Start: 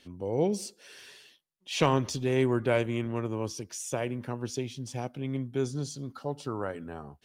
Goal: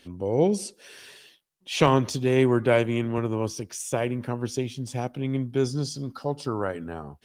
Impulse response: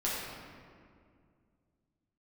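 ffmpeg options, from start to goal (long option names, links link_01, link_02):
-filter_complex "[0:a]asettb=1/sr,asplit=3[link_01][link_02][link_03];[link_01]atrim=end=1.874[link_04];[link_02]atrim=start=1.87:end=3.18,asetpts=PTS-STARTPTS,afade=type=in:duration=0.004:curve=qsin,afade=type=out:start_time=1.306:duration=0.004:curve=qsin,highpass=86[link_05];[link_03]atrim=start=3.176[link_06];[link_04][link_05]acrossfade=duration=0.004:curve1=hsin:curve2=qsin[link_07];[link_07][link_06]acrossfade=duration=0.004:curve1=qsin:curve2=hsin,asplit=3[link_08][link_09][link_10];[link_08]afade=type=out:start_time=5.47:duration=0.02[link_11];[link_09]equalizer=frequency=5000:width=6.4:gain=11,afade=type=in:start_time=5.47:duration=0.02,afade=type=out:start_time=6.59:duration=0.02[link_12];[link_10]afade=type=in:start_time=6.59:duration=0.02[link_13];[link_11][link_12][link_13]amix=inputs=3:normalize=0,volume=5.5dB" -ar 48000 -c:a libopus -b:a 32k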